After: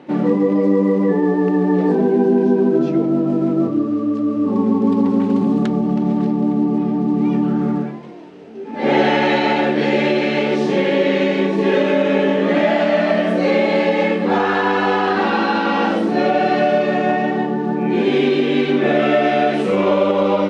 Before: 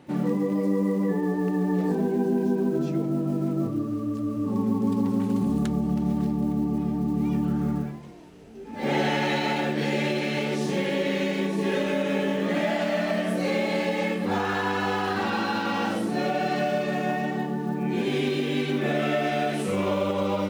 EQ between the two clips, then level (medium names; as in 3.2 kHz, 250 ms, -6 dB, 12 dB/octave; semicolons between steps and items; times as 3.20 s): band-pass 290–4000 Hz; bass shelf 490 Hz +7 dB; +8.0 dB